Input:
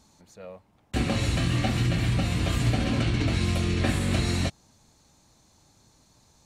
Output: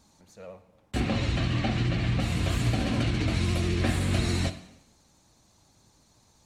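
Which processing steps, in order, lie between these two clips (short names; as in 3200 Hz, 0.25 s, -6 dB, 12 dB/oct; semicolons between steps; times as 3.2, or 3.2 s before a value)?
1–2.2 LPF 4900 Hz 12 dB/oct; on a send at -9.5 dB: reverb RT60 0.85 s, pre-delay 5 ms; on the sum: vibrato 14 Hz 66 cents; gain -2 dB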